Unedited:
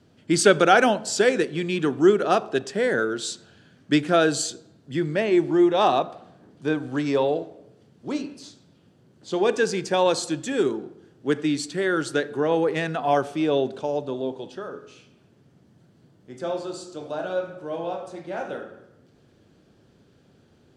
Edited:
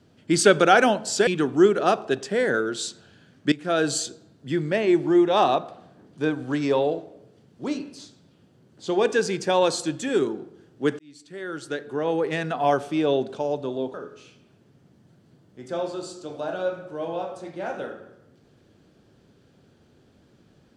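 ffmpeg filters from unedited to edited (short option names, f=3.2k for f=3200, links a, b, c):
-filter_complex "[0:a]asplit=5[a][b][c][d][e];[a]atrim=end=1.272[f];[b]atrim=start=1.708:end=3.96,asetpts=PTS-STARTPTS,afade=t=out:st=2.248:d=0.004:c=hsin:silence=0.125893[g];[c]atrim=start=3.96:end=11.43,asetpts=PTS-STARTPTS,afade=t=in:d=0.4:silence=0.125893,afade=t=out:st=7.466:d=0.004:c=hsin[h];[d]atrim=start=11.43:end=14.382,asetpts=PTS-STARTPTS,afade=t=in:d=1.54[i];[e]atrim=start=14.648[j];[g][h][i]concat=n=3:v=0:a=1[k];[f][k]acrossfade=d=0.004:c1=hsin:c2=hsin[l];[l][j]acrossfade=d=0.004:c1=hsin:c2=hsin"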